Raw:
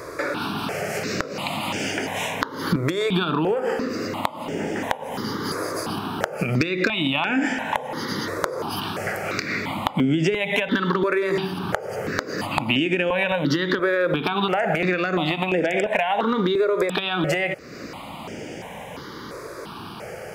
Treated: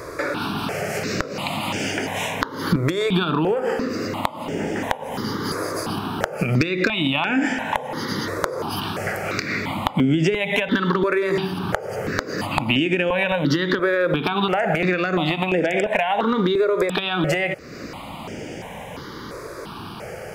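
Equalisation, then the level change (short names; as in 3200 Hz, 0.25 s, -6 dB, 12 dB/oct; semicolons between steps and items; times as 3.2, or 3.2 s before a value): low shelf 87 Hz +7.5 dB; +1.0 dB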